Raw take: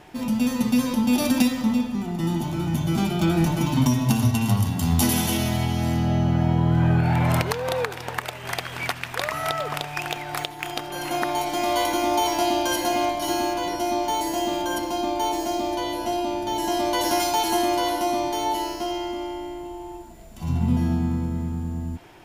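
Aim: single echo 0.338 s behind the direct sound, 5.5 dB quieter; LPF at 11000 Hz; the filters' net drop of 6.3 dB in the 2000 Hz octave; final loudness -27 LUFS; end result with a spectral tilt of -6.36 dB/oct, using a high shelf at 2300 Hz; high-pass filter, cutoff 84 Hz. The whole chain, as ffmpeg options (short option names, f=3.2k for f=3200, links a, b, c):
-af "highpass=84,lowpass=11k,equalizer=f=2k:t=o:g=-6,highshelf=f=2.3k:g=-4,aecho=1:1:338:0.531,volume=-3dB"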